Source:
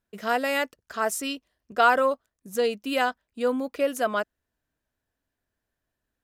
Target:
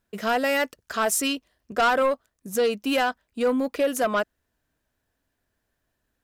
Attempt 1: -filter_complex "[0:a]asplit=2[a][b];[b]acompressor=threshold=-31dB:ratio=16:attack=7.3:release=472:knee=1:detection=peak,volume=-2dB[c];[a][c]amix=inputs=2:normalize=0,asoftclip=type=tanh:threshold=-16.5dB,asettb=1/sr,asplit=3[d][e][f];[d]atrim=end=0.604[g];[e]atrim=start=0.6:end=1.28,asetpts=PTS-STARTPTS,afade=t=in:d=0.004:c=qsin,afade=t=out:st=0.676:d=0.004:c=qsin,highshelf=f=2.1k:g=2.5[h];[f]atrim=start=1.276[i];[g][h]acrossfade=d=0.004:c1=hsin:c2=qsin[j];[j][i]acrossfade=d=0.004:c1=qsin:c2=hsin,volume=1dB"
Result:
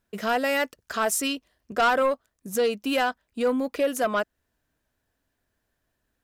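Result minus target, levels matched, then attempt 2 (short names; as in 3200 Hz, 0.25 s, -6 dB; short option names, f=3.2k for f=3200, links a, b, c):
compressor: peak gain reduction +7 dB
-filter_complex "[0:a]asplit=2[a][b];[b]acompressor=threshold=-23.5dB:ratio=16:attack=7.3:release=472:knee=1:detection=peak,volume=-2dB[c];[a][c]amix=inputs=2:normalize=0,asoftclip=type=tanh:threshold=-16.5dB,asettb=1/sr,asplit=3[d][e][f];[d]atrim=end=0.604[g];[e]atrim=start=0.6:end=1.28,asetpts=PTS-STARTPTS,afade=t=in:d=0.004:c=qsin,afade=t=out:st=0.676:d=0.004:c=qsin,highshelf=f=2.1k:g=2.5[h];[f]atrim=start=1.276[i];[g][h]acrossfade=d=0.004:c1=hsin:c2=qsin[j];[j][i]acrossfade=d=0.004:c1=qsin:c2=hsin,volume=1dB"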